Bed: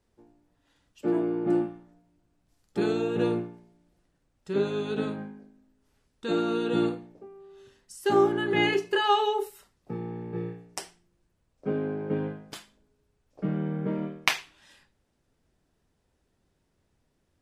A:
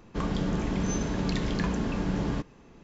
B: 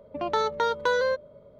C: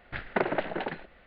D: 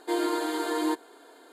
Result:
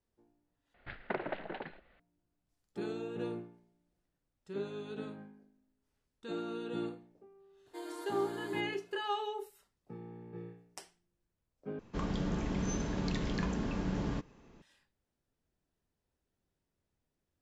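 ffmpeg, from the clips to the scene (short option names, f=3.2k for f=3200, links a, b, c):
-filter_complex "[0:a]volume=-12.5dB,asplit=3[a][b][c];[a]atrim=end=0.744[d];[3:a]atrim=end=1.26,asetpts=PTS-STARTPTS,volume=-9.5dB[e];[b]atrim=start=1.996:end=11.794[f];[1:a]atrim=end=2.83,asetpts=PTS-STARTPTS,volume=-6dB[g];[c]atrim=start=14.616[h];[4:a]atrim=end=1.52,asetpts=PTS-STARTPTS,volume=-17dB,afade=t=in:d=0.004:c=hsin,afade=t=out:st=1.516:d=0.004:c=hsin,adelay=7660[i];[d][e]acrossfade=d=0.004:c1=hsin:c2=hsin[j];[j][f]acrossfade=d=0.004:c1=hsin:c2=hsin[k];[k][g]acrossfade=d=0.004:c1=hsin:c2=hsin[l];[l][h]acrossfade=d=0.004:c1=hsin:c2=hsin[m];[m][i]amix=inputs=2:normalize=0"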